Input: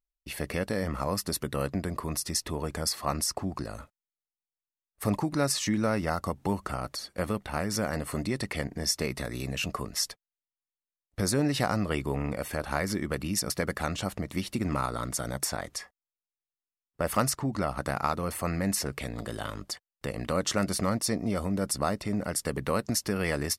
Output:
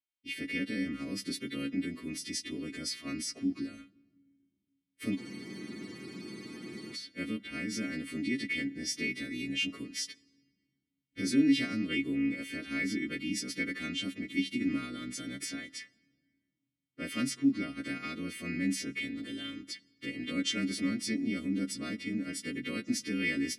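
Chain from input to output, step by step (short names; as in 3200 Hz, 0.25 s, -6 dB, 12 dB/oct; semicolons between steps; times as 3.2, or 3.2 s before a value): frequency quantiser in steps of 2 st; vowel filter i; on a send at -20 dB: reverb RT60 1.6 s, pre-delay 3 ms; on the sum: spectral freeze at 5.21, 1.73 s; gain +9 dB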